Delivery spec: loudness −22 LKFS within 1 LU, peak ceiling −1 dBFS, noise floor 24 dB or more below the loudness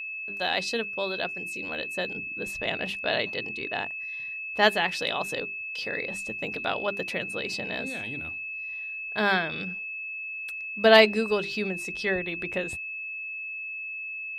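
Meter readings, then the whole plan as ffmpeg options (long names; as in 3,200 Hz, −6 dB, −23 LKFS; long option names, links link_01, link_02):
interfering tone 2,600 Hz; level of the tone −33 dBFS; integrated loudness −28.0 LKFS; sample peak −3.0 dBFS; target loudness −22.0 LKFS
→ -af "bandreject=frequency=2600:width=30"
-af "volume=6dB,alimiter=limit=-1dB:level=0:latency=1"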